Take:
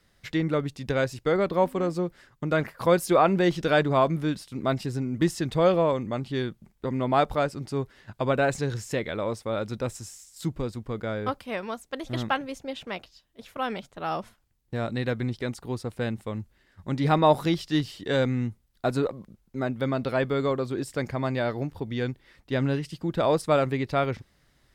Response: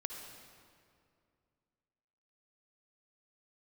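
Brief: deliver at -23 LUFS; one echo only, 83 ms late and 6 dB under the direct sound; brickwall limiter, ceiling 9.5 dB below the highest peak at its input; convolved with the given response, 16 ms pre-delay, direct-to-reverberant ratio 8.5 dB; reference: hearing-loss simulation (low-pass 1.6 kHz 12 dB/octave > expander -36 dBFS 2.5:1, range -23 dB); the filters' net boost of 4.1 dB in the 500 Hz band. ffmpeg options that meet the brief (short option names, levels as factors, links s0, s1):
-filter_complex "[0:a]equalizer=f=500:t=o:g=5,alimiter=limit=0.2:level=0:latency=1,aecho=1:1:83:0.501,asplit=2[s0][s1];[1:a]atrim=start_sample=2205,adelay=16[s2];[s1][s2]afir=irnorm=-1:irlink=0,volume=0.398[s3];[s0][s3]amix=inputs=2:normalize=0,lowpass=1600,agate=range=0.0708:threshold=0.0158:ratio=2.5,volume=1.33"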